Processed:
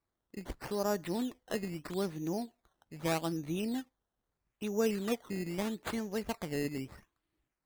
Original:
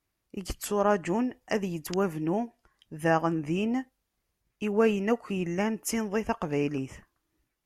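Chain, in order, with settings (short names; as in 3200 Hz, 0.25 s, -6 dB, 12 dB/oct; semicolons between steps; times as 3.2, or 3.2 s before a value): dynamic EQ 1100 Hz, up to -5 dB, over -42 dBFS, Q 1.3; decimation with a swept rate 13×, swing 100% 0.79 Hz; gain -6.5 dB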